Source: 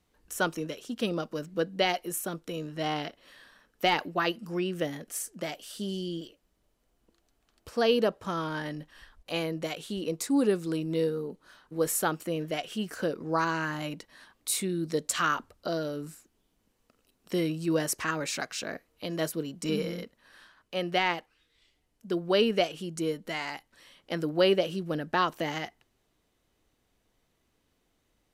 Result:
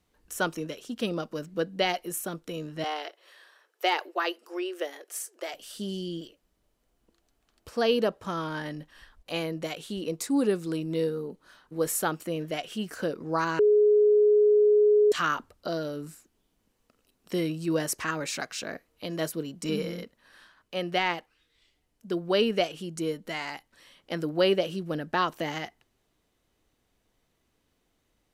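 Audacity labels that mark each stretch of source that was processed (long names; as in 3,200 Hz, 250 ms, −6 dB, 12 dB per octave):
2.840000	5.540000	elliptic high-pass filter 360 Hz, stop band 50 dB
13.590000	15.120000	beep over 419 Hz −16.5 dBFS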